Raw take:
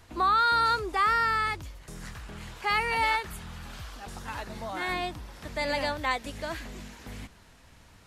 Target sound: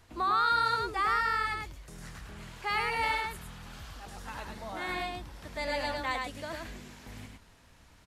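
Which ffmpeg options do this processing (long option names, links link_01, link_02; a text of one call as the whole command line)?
ffmpeg -i in.wav -af "aecho=1:1:105:0.668,volume=-5dB" out.wav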